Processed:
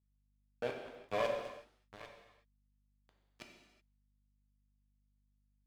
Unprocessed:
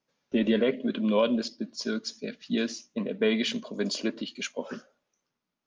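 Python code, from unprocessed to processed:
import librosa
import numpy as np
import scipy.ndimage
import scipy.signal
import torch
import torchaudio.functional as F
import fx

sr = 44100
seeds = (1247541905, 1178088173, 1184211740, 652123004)

y = fx.tape_stop_end(x, sr, length_s=1.8)
y = fx.hpss(y, sr, part='harmonic', gain_db=5)
y = fx.auto_swell(y, sr, attack_ms=217.0)
y = fx.level_steps(y, sr, step_db=12)
y = fx.vowel_filter(y, sr, vowel='a')
y = y + 10.0 ** (-8.5 / 20.0) * np.pad(y, (int(803 * sr / 1000.0), 0))[:len(y)]
y = np.sign(y) * np.maximum(np.abs(y) - 10.0 ** (-41.0 / 20.0), 0.0)
y = fx.add_hum(y, sr, base_hz=50, snr_db=32)
y = fx.rev_gated(y, sr, seeds[0], gate_ms=400, shape='falling', drr_db=1.5)
y = F.gain(torch.from_numpy(y), 7.5).numpy()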